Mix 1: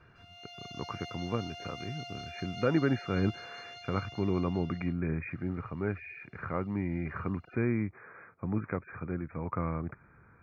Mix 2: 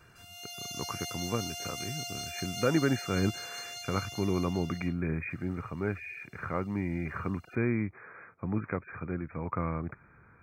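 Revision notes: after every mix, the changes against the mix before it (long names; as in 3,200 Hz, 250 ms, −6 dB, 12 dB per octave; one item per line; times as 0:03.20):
master: remove high-frequency loss of the air 270 metres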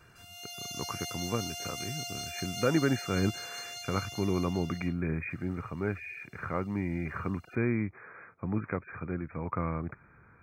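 nothing changed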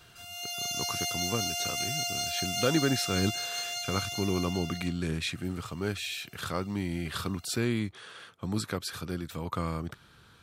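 speech: remove linear-phase brick-wall low-pass 2,500 Hz
background +7.0 dB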